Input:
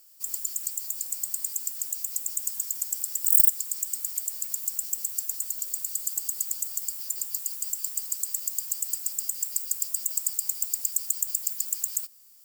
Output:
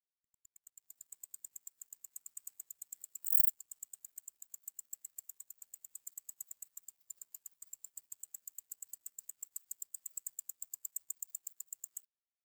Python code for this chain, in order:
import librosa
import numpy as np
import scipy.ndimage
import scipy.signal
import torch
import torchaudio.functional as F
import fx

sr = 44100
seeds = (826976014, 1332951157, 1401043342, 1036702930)

y = fx.fade_in_head(x, sr, length_s=1.0)
y = np.sign(y) * np.maximum(np.abs(y) - 10.0 ** (-32.0 / 20.0), 0.0)
y = fx.spectral_expand(y, sr, expansion=1.5)
y = y * 10.0 ** (-7.5 / 20.0)